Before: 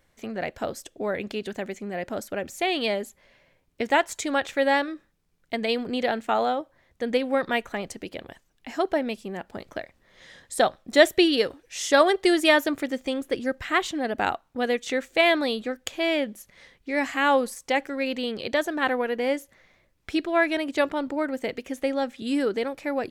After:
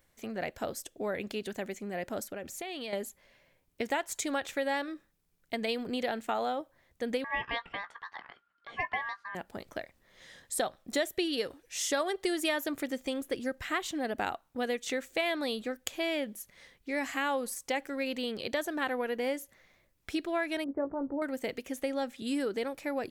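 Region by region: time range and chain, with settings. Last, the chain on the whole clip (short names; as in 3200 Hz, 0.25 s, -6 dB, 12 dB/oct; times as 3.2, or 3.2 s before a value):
2.24–2.93 compressor 12:1, threshold -30 dBFS + high shelf 8800 Hz -4.5 dB
7.24–9.35 LPF 1800 Hz + ring modulator 1400 Hz + doubler 17 ms -11.5 dB
20.64–21.22 Gaussian blur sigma 8.3 samples + doubler 18 ms -8 dB
whole clip: high shelf 9000 Hz +11.5 dB; compressor 4:1, threshold -23 dBFS; gain -5 dB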